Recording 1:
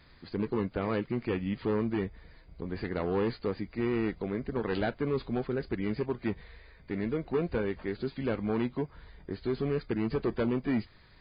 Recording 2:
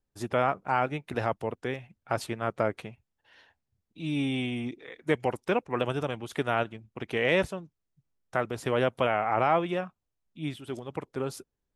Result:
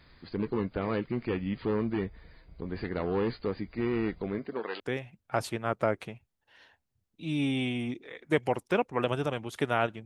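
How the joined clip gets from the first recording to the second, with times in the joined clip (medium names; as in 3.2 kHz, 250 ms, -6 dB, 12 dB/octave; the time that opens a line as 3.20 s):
recording 1
4.38–4.80 s: high-pass 170 Hz -> 750 Hz
4.80 s: go over to recording 2 from 1.57 s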